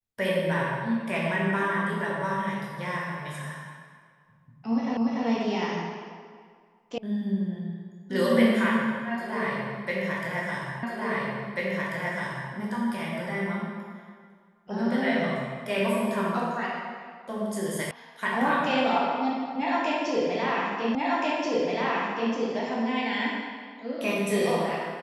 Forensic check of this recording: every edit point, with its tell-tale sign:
0:04.97: the same again, the last 0.29 s
0:06.98: cut off before it has died away
0:10.83: the same again, the last 1.69 s
0:17.91: cut off before it has died away
0:20.95: the same again, the last 1.38 s

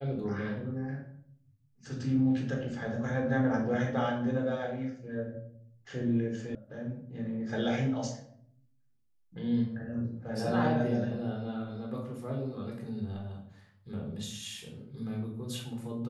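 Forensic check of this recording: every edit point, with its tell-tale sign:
0:06.55: cut off before it has died away

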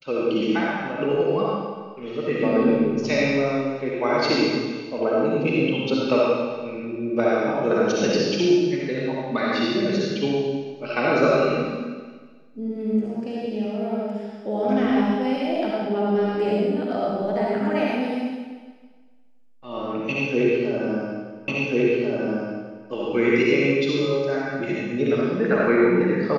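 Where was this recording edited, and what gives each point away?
0:21.48: the same again, the last 1.39 s

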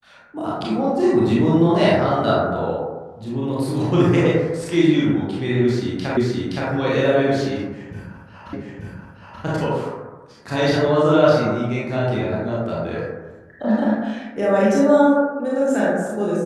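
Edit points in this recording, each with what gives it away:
0:06.17: the same again, the last 0.52 s
0:08.53: the same again, the last 0.88 s

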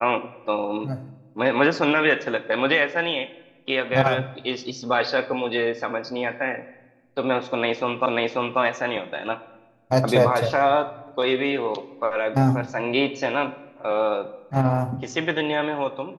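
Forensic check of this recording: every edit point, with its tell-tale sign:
0:08.06: the same again, the last 0.54 s

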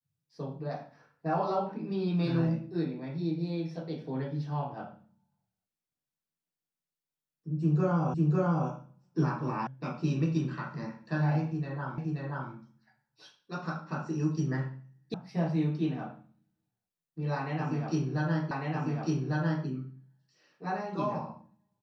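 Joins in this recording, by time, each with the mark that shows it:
0:08.14: the same again, the last 0.55 s
0:09.67: cut off before it has died away
0:11.98: the same again, the last 0.53 s
0:15.14: cut off before it has died away
0:18.51: the same again, the last 1.15 s

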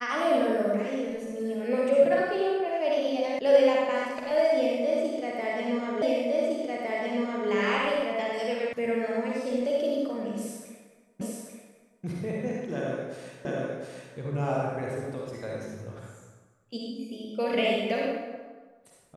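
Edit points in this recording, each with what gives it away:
0:03.39: cut off before it has died away
0:06.02: the same again, the last 1.46 s
0:08.73: cut off before it has died away
0:11.21: the same again, the last 0.84 s
0:13.45: the same again, the last 0.71 s

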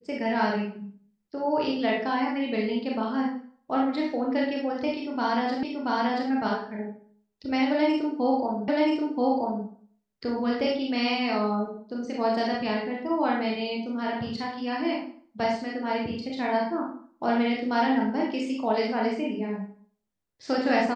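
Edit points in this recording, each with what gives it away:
0:05.63: the same again, the last 0.68 s
0:08.68: the same again, the last 0.98 s

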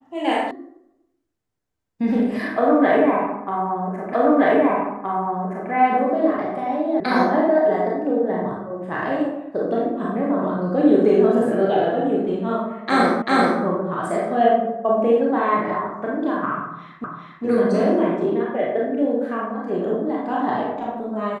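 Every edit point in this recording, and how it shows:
0:00.51: cut off before it has died away
0:04.13: the same again, the last 1.57 s
0:07.00: cut off before it has died away
0:13.22: the same again, the last 0.39 s
0:17.04: the same again, the last 0.4 s

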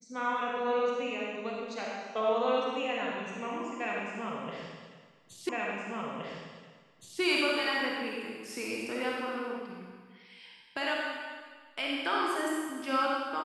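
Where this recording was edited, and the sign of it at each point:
0:05.49: the same again, the last 1.72 s

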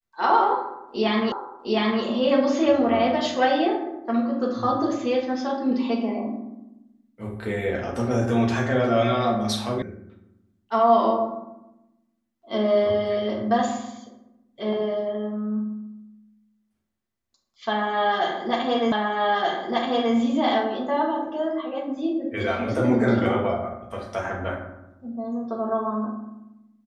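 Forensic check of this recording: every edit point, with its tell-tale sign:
0:01.32: the same again, the last 0.71 s
0:09.82: cut off before it has died away
0:18.92: the same again, the last 1.23 s

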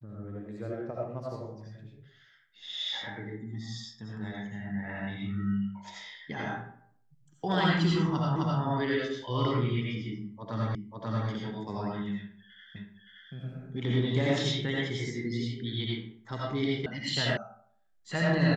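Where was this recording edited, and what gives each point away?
0:08.36: the same again, the last 0.26 s
0:10.75: the same again, the last 0.54 s
0:12.76: the same again, the last 0.57 s
0:16.86: cut off before it has died away
0:17.37: cut off before it has died away

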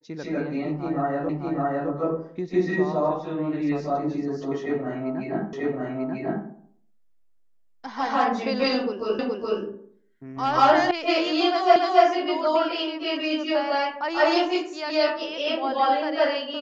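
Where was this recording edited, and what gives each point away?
0:01.29: the same again, the last 0.61 s
0:05.53: the same again, the last 0.94 s
0:09.19: the same again, the last 0.42 s
0:10.91: cut off before it has died away
0:11.76: the same again, the last 0.28 s

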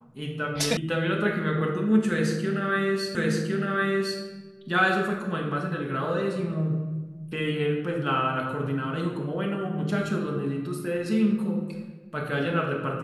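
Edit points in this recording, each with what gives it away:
0:00.77: cut off before it has died away
0:03.15: the same again, the last 1.06 s

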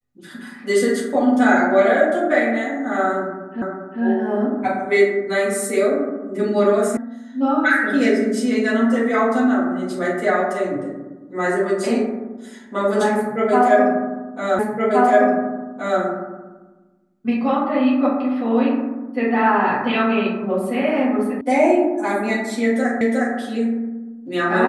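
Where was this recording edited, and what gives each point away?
0:03.62: the same again, the last 0.4 s
0:06.97: cut off before it has died away
0:14.59: the same again, the last 1.42 s
0:21.41: cut off before it has died away
0:23.01: the same again, the last 0.36 s

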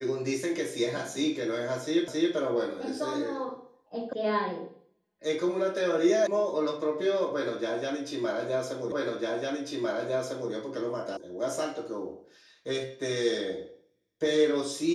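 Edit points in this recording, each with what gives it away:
0:02.08: the same again, the last 0.27 s
0:04.13: cut off before it has died away
0:06.27: cut off before it has died away
0:08.92: the same again, the last 1.6 s
0:11.17: cut off before it has died away

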